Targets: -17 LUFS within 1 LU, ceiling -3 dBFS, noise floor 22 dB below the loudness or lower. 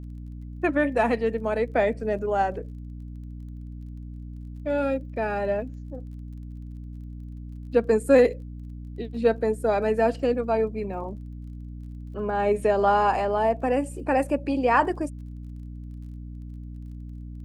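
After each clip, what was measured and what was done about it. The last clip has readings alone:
ticks 28/s; hum 60 Hz; harmonics up to 300 Hz; hum level -35 dBFS; loudness -24.5 LUFS; peak -7.0 dBFS; loudness target -17.0 LUFS
-> de-click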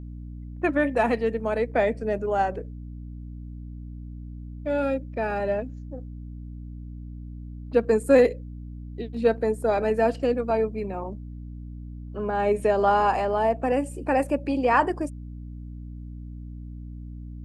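ticks 0.057/s; hum 60 Hz; harmonics up to 300 Hz; hum level -35 dBFS
-> notches 60/120/180/240/300 Hz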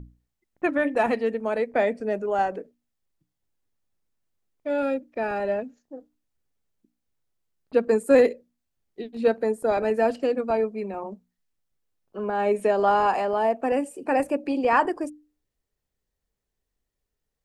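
hum none; loudness -24.5 LUFS; peak -7.0 dBFS; loudness target -17.0 LUFS
-> gain +7.5 dB; limiter -3 dBFS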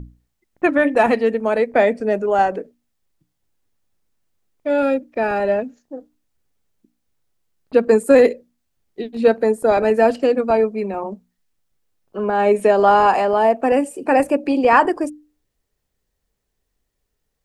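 loudness -17.5 LUFS; peak -3.0 dBFS; noise floor -75 dBFS

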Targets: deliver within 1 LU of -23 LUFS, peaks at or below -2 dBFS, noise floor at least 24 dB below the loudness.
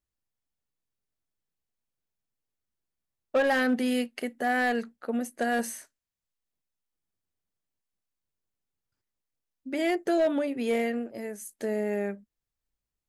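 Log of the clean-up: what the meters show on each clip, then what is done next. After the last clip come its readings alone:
clipped 0.3%; flat tops at -19.0 dBFS; loudness -28.5 LUFS; peak -19.0 dBFS; loudness target -23.0 LUFS
-> clip repair -19 dBFS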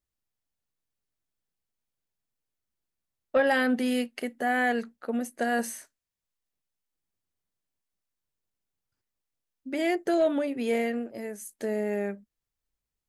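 clipped 0.0%; loudness -28.5 LUFS; peak -12.5 dBFS; loudness target -23.0 LUFS
-> gain +5.5 dB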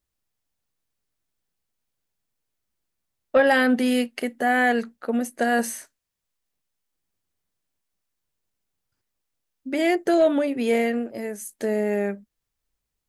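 loudness -23.0 LUFS; peak -7.0 dBFS; noise floor -82 dBFS

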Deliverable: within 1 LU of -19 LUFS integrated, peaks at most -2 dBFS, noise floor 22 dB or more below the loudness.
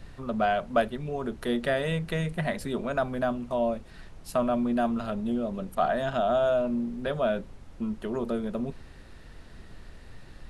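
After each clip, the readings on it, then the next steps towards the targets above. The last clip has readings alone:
noise floor -48 dBFS; noise floor target -51 dBFS; loudness -29.0 LUFS; peak -11.0 dBFS; loudness target -19.0 LUFS
-> noise print and reduce 6 dB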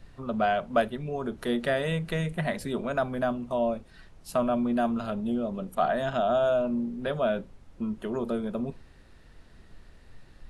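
noise floor -54 dBFS; loudness -29.0 LUFS; peak -11.0 dBFS; loudness target -19.0 LUFS
-> gain +10 dB; limiter -2 dBFS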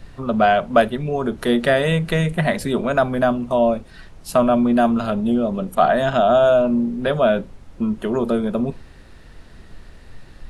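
loudness -19.0 LUFS; peak -2.0 dBFS; noise floor -44 dBFS

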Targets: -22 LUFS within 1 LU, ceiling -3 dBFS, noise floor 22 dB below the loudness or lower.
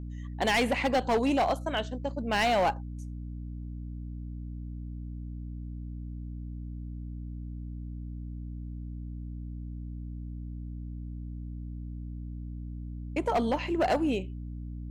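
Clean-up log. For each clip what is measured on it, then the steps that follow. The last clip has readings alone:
clipped 0.9%; flat tops at -21.0 dBFS; hum 60 Hz; harmonics up to 300 Hz; hum level -36 dBFS; loudness -33.0 LUFS; peak -21.0 dBFS; loudness target -22.0 LUFS
-> clip repair -21 dBFS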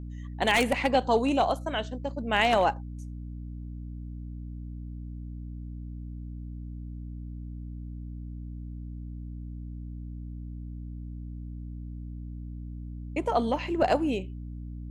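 clipped 0.0%; hum 60 Hz; harmonics up to 300 Hz; hum level -36 dBFS
-> notches 60/120/180/240/300 Hz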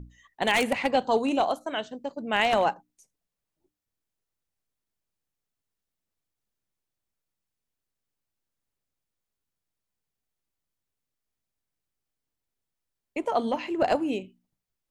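hum none; loudness -26.5 LUFS; peak -11.0 dBFS; loudness target -22.0 LUFS
-> gain +4.5 dB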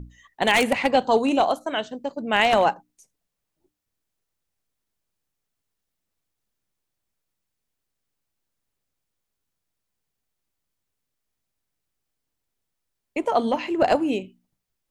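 loudness -22.0 LUFS; peak -6.5 dBFS; noise floor -81 dBFS

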